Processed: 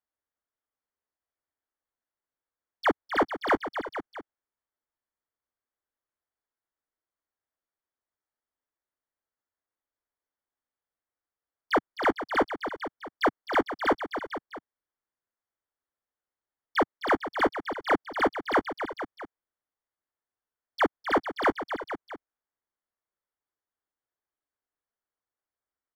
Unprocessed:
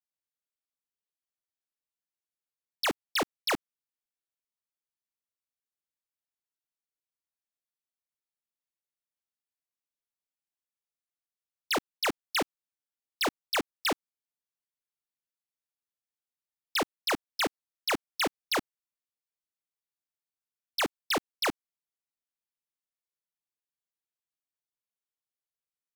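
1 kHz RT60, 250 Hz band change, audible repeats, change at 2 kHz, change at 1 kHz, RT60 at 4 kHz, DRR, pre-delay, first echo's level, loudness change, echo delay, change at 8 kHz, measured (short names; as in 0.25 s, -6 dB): none, +6.0 dB, 4, +4.0 dB, +7.5 dB, none, none, none, -9.5 dB, +3.0 dB, 0.26 s, under -15 dB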